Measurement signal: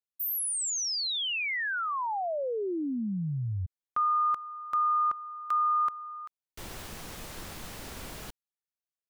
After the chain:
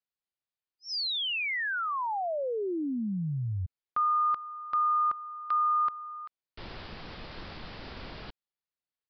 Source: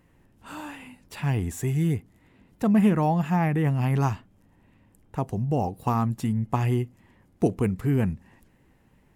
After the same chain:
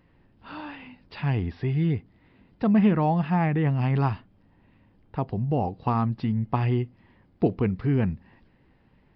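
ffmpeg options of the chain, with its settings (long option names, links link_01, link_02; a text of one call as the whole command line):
ffmpeg -i in.wav -af "aresample=11025,aresample=44100" out.wav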